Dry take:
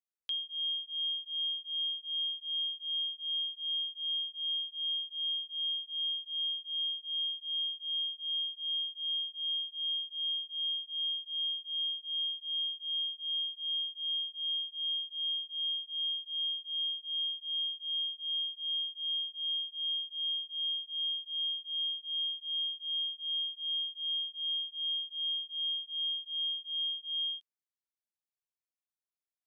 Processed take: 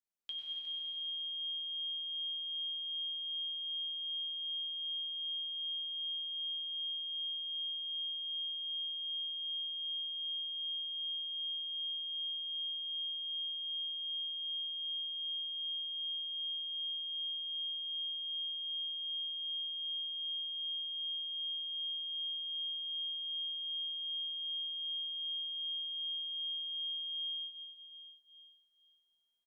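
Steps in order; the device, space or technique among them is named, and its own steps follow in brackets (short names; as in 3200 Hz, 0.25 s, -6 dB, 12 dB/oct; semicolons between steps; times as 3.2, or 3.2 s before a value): cave (echo 0.36 s -10.5 dB; reverb RT60 4.3 s, pre-delay 88 ms, DRR -2.5 dB); shoebox room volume 170 m³, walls furnished, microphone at 1.2 m; gain -5 dB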